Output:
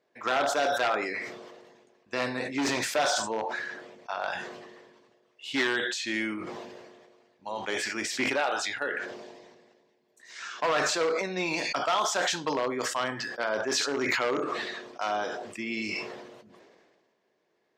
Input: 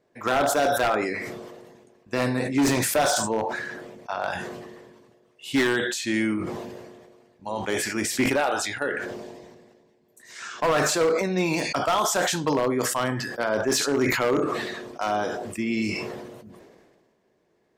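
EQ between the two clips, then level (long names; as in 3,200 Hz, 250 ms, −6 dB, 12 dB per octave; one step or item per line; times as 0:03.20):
high-frequency loss of the air 170 metres
RIAA equalisation recording
−2.5 dB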